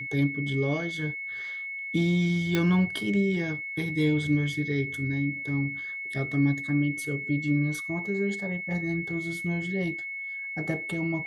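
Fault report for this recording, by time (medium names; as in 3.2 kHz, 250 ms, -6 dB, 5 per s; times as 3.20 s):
whine 2.2 kHz -33 dBFS
2.55 s: pop -11 dBFS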